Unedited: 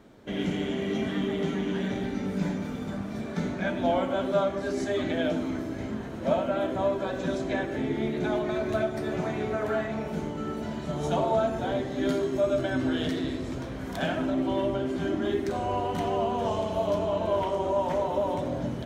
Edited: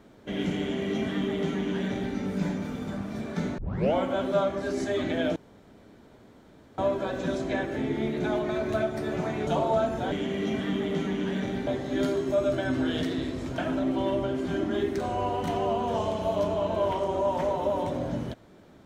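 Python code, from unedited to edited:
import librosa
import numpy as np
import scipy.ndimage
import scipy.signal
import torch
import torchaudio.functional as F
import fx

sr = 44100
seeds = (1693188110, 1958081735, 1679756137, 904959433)

y = fx.edit(x, sr, fx.duplicate(start_s=0.6, length_s=1.55, to_s=11.73),
    fx.tape_start(start_s=3.58, length_s=0.36),
    fx.room_tone_fill(start_s=5.36, length_s=1.42),
    fx.cut(start_s=9.47, length_s=1.61),
    fx.cut(start_s=13.64, length_s=0.45), tone=tone)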